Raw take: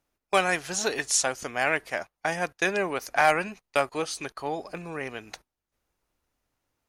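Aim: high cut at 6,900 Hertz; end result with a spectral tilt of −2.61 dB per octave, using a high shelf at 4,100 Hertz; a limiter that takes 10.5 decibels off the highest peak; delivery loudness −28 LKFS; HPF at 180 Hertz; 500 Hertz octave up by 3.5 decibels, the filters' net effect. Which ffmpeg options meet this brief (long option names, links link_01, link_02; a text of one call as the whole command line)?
ffmpeg -i in.wav -af "highpass=180,lowpass=6900,equalizer=frequency=500:width_type=o:gain=4.5,highshelf=frequency=4100:gain=-4,volume=3dB,alimiter=limit=-14.5dB:level=0:latency=1" out.wav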